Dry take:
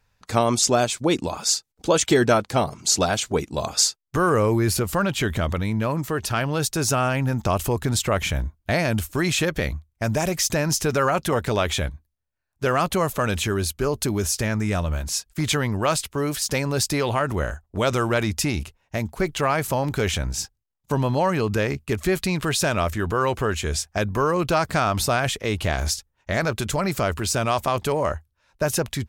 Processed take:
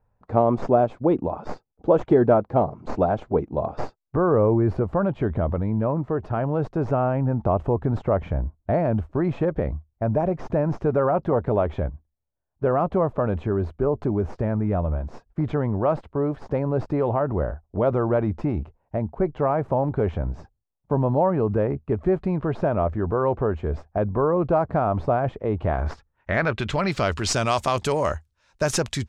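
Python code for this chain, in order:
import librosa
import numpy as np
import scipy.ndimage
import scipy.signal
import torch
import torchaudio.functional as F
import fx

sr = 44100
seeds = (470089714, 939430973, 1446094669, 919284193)

y = fx.tracing_dist(x, sr, depth_ms=0.042)
y = fx.filter_sweep_lowpass(y, sr, from_hz=760.0, to_hz=7300.0, start_s=25.52, end_s=27.46, q=1.2)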